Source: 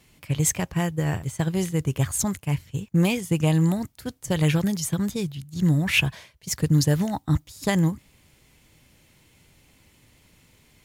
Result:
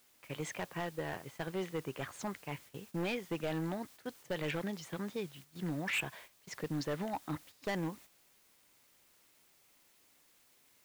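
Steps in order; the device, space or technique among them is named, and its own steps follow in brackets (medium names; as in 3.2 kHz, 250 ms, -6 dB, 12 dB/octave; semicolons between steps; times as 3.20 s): aircraft radio (band-pass 350–2700 Hz; hard clipper -25 dBFS, distortion -9 dB; white noise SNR 19 dB; gate -48 dBFS, range -8 dB); trim -5.5 dB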